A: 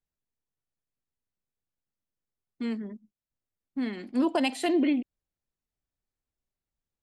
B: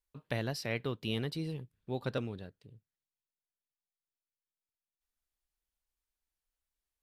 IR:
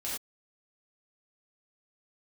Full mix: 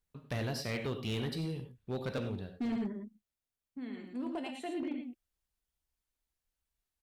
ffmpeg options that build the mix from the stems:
-filter_complex "[0:a]highshelf=frequency=5300:gain=-6,bandreject=frequency=4900:width=5.2,acompressor=threshold=-36dB:ratio=1.5,volume=-2dB,afade=type=out:start_time=3.04:duration=0.28:silence=0.316228,asplit=3[link_01][link_02][link_03];[link_02]volume=-6dB[link_04];[link_03]volume=-3.5dB[link_05];[1:a]asoftclip=type=hard:threshold=-21.5dB,volume=-2.5dB,asplit=2[link_06][link_07];[link_07]volume=-6dB[link_08];[2:a]atrim=start_sample=2205[link_09];[link_04][link_08]amix=inputs=2:normalize=0[link_10];[link_10][link_09]afir=irnorm=-1:irlink=0[link_11];[link_05]aecho=0:1:112:1[link_12];[link_01][link_06][link_11][link_12]amix=inputs=4:normalize=0,equalizer=frequency=73:width=0.76:gain=5,volume=30.5dB,asoftclip=hard,volume=-30.5dB"

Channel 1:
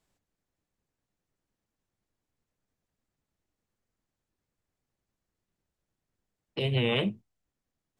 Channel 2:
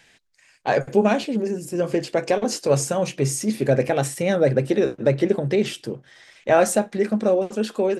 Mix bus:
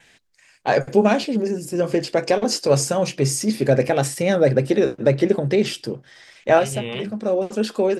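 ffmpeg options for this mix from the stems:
ffmpeg -i stem1.wav -i stem2.wav -filter_complex "[0:a]volume=-2.5dB,asplit=2[link_01][link_02];[1:a]adynamicequalizer=threshold=0.00282:dfrequency=4900:dqfactor=5.1:tfrequency=4900:tqfactor=5.1:attack=5:release=100:ratio=0.375:range=3.5:mode=boostabove:tftype=bell,volume=2dB[link_03];[link_02]apad=whole_len=352511[link_04];[link_03][link_04]sidechaincompress=threshold=-37dB:ratio=8:attack=41:release=537[link_05];[link_01][link_05]amix=inputs=2:normalize=0" out.wav

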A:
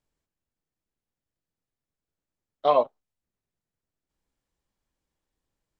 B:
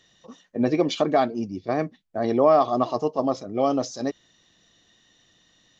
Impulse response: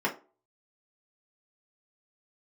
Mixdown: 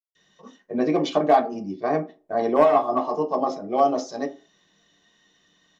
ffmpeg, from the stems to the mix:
-filter_complex "[0:a]acrusher=bits=8:mix=0:aa=0.000001,acompressor=threshold=-27dB:ratio=6,volume=-5dB,asplit=2[link_01][link_02];[1:a]adynamicequalizer=threshold=0.0282:dfrequency=780:dqfactor=1.9:tfrequency=780:tqfactor=1.9:attack=5:release=100:ratio=0.375:range=2.5:mode=boostabove:tftype=bell,asoftclip=type=hard:threshold=-9dB,adelay=150,volume=-6dB,asplit=2[link_03][link_04];[link_04]volume=-7.5dB[link_05];[link_02]apad=whole_len=262374[link_06];[link_03][link_06]sidechaincompress=threshold=-50dB:ratio=8:attack=16:release=415[link_07];[2:a]atrim=start_sample=2205[link_08];[link_05][link_08]afir=irnorm=-1:irlink=0[link_09];[link_01][link_07][link_09]amix=inputs=3:normalize=0"

